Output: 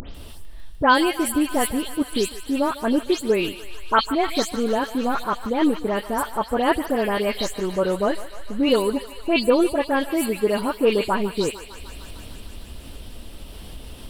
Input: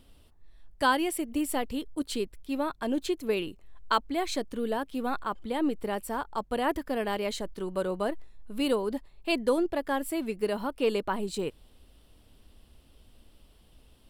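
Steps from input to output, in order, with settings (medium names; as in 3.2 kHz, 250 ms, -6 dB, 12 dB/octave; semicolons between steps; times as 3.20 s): delay that grows with frequency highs late, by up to 146 ms; upward compressor, threshold -33 dBFS; on a send: thinning echo 150 ms, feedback 84%, high-pass 610 Hz, level -14 dB; on the sum: trim +8.5 dB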